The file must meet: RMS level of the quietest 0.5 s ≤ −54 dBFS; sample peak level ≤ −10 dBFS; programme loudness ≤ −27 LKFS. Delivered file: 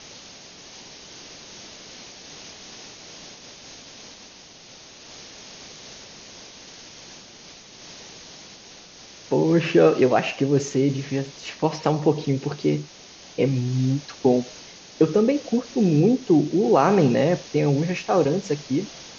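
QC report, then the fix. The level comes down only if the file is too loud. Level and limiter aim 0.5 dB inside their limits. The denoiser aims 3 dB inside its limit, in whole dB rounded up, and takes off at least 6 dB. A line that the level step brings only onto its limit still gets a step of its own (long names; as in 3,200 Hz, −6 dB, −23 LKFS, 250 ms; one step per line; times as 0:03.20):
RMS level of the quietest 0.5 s −46 dBFS: out of spec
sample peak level −4.5 dBFS: out of spec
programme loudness −21.5 LKFS: out of spec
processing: broadband denoise 6 dB, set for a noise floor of −46 dBFS
level −6 dB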